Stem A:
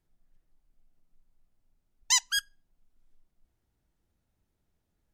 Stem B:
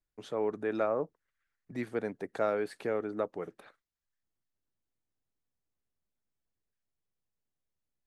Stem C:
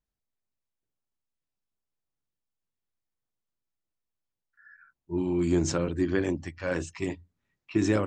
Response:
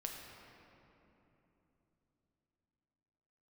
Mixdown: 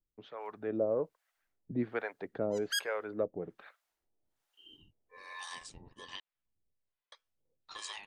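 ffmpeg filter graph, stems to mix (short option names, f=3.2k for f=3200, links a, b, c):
-filter_complex "[0:a]highpass=610,acompressor=threshold=-33dB:ratio=2.5,adelay=400,volume=-1dB[a];[1:a]lowpass=f=3.8k:w=0.5412,lowpass=f=3.8k:w=1.3066,aphaser=in_gain=1:out_gain=1:delay=2:decay=0.3:speed=0.5:type=sinusoidal,volume=-2.5dB[b];[2:a]highpass=1.1k,acompressor=threshold=-40dB:ratio=10,aeval=exprs='val(0)*sin(2*PI*1400*n/s)':c=same,volume=-1dB,asplit=3[c][d][e];[c]atrim=end=6.2,asetpts=PTS-STARTPTS,afade=t=out:st=6.196:d=0.004:c=hsin[f];[d]atrim=start=6.2:end=7.12,asetpts=PTS-STARTPTS,volume=0[g];[e]atrim=start=7.12,asetpts=PTS-STARTPTS,afade=t=in:d=0.004:c=hsin[h];[f][g][h]concat=n=3:v=0:a=1[i];[a][b][i]amix=inputs=3:normalize=0,dynaudnorm=f=380:g=3:m=6dB,acrossover=split=600[j][k];[j]aeval=exprs='val(0)*(1-1/2+1/2*cos(2*PI*1.2*n/s))':c=same[l];[k]aeval=exprs='val(0)*(1-1/2-1/2*cos(2*PI*1.2*n/s))':c=same[m];[l][m]amix=inputs=2:normalize=0"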